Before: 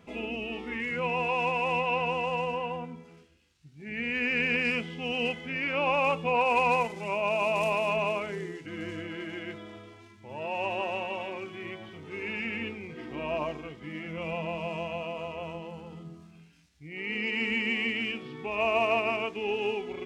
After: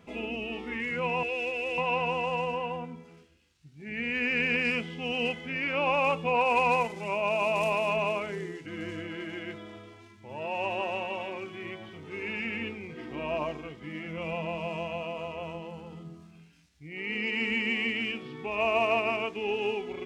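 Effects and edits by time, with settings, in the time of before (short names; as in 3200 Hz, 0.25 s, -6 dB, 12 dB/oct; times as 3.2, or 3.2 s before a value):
1.23–1.78 fixed phaser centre 380 Hz, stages 4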